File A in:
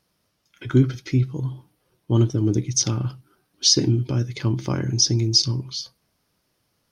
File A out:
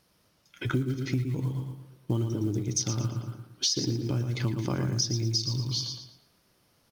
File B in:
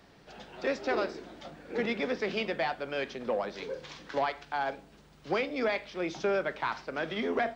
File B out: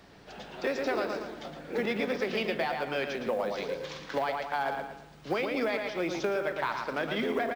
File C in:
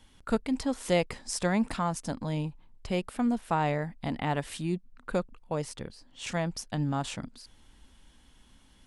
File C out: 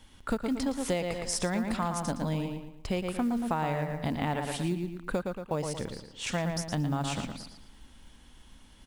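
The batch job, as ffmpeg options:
-filter_complex "[0:a]asplit=2[a][b];[b]adelay=114,lowpass=f=4.9k:p=1,volume=-6dB,asplit=2[c][d];[d]adelay=114,lowpass=f=4.9k:p=1,volume=0.39,asplit=2[e][f];[f]adelay=114,lowpass=f=4.9k:p=1,volume=0.39,asplit=2[g][h];[h]adelay=114,lowpass=f=4.9k:p=1,volume=0.39,asplit=2[i][j];[j]adelay=114,lowpass=f=4.9k:p=1,volume=0.39[k];[c][e][g][i][k]amix=inputs=5:normalize=0[l];[a][l]amix=inputs=2:normalize=0,acrusher=bits=8:mode=log:mix=0:aa=0.000001,acompressor=threshold=-29dB:ratio=6,volume=3dB"

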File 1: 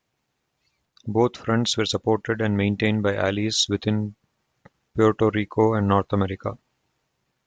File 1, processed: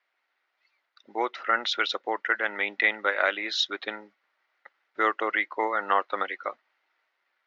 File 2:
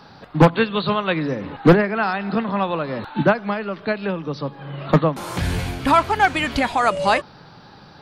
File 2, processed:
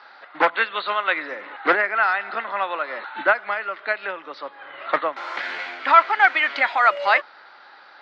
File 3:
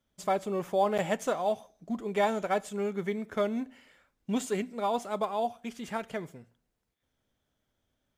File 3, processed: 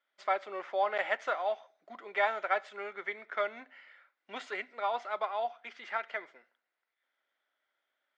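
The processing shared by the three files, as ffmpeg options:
-af "highpass=f=430:w=0.5412,highpass=f=430:w=1.3066,equalizer=f=450:t=q:w=4:g=-8,equalizer=f=1.4k:t=q:w=4:g=8,equalizer=f=2k:t=q:w=4:g=10,lowpass=f=4.5k:w=0.5412,lowpass=f=4.5k:w=1.3066,volume=-2.5dB"

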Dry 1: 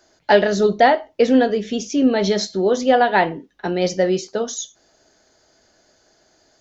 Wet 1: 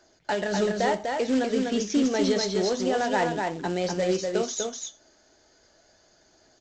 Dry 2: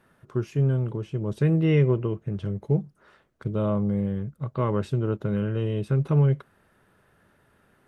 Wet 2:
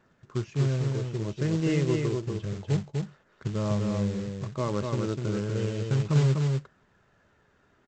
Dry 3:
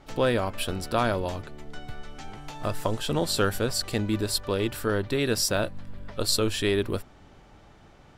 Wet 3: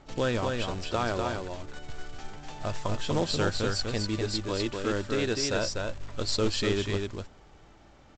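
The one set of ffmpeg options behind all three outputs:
-af "alimiter=limit=-13dB:level=0:latency=1:release=157,aphaser=in_gain=1:out_gain=1:delay=3.8:decay=0.26:speed=0.31:type=triangular,aresample=16000,acrusher=bits=4:mode=log:mix=0:aa=0.000001,aresample=44100,aecho=1:1:247:0.631,volume=-4dB"

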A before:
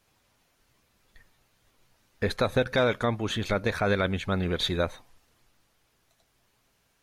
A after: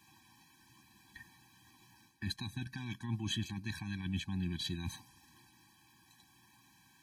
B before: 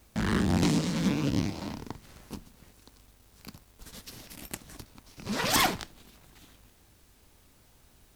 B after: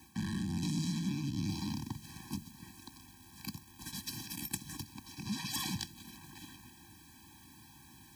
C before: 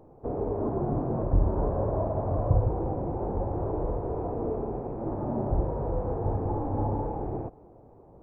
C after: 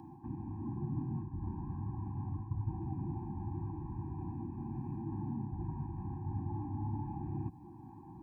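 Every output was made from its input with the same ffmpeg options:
-filter_complex "[0:a]areverse,acompressor=threshold=-34dB:ratio=16,areverse,highpass=120,acrossover=split=200|3000[a][b][c];[b]acompressor=threshold=-56dB:ratio=2.5[d];[a][d][c]amix=inputs=3:normalize=0,afftfilt=real='re*eq(mod(floor(b*sr/1024/380),2),0)':imag='im*eq(mod(floor(b*sr/1024/380),2),0)':win_size=1024:overlap=0.75,volume=8dB"

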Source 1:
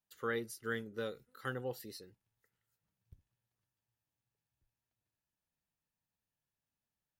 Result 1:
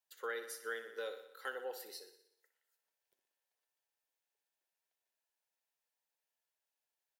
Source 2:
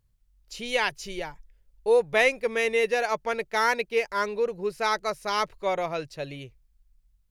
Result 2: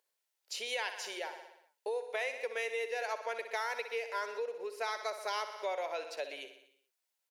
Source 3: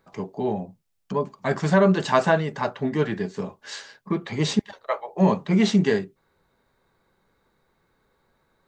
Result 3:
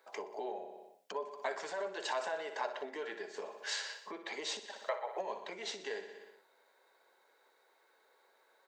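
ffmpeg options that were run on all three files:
-af "alimiter=limit=-15dB:level=0:latency=1:release=46,bandreject=f=1.2k:w=8,aecho=1:1:61|122|183|244|305|366|427:0.266|0.157|0.0926|0.0546|0.0322|0.019|0.0112,acompressor=threshold=-35dB:ratio=4,highpass=f=450:w=0.5412,highpass=f=450:w=1.3066,volume=1dB"

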